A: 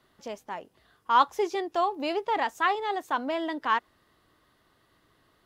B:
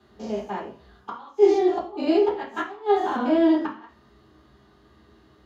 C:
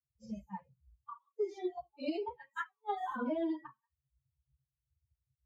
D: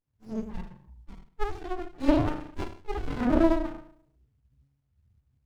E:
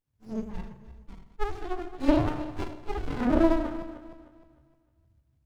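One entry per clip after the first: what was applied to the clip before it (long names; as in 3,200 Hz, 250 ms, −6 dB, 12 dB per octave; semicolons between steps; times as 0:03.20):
spectrum averaged block by block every 100 ms; gate with flip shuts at −21 dBFS, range −25 dB; convolution reverb RT60 0.50 s, pre-delay 3 ms, DRR −8 dB; level −7 dB
spectral dynamics exaggerated over time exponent 3; downward compressor 12 to 1, threshold −28 dBFS, peak gain reduction 15.5 dB; level −3.5 dB
feedback delay network reverb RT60 0.46 s, low-frequency decay 1.6×, high-frequency decay 0.75×, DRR −4.5 dB; harmonic and percussive parts rebalanced harmonic +7 dB; windowed peak hold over 65 samples
feedback delay that plays each chunk backwards 153 ms, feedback 57%, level −13 dB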